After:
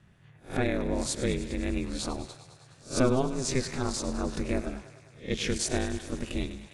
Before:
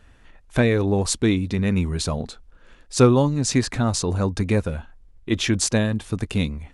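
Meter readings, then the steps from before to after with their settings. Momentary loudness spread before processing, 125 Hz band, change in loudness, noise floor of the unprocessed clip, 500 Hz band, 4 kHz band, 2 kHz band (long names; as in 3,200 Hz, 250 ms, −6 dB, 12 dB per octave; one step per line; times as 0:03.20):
11 LU, −12.5 dB, −9.0 dB, −52 dBFS, −8.0 dB, −7.5 dB, −7.5 dB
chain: peak hold with a rise ahead of every peak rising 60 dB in 0.30 s
feedback echo with a high-pass in the loop 102 ms, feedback 77%, high-pass 280 Hz, level −14 dB
ring modulation 130 Hz
level −6.5 dB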